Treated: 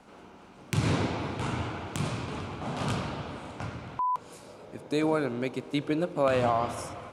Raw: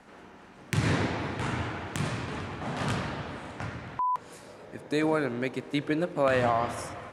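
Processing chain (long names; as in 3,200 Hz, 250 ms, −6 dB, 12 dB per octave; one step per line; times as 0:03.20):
parametric band 1,800 Hz −10.5 dB 0.3 octaves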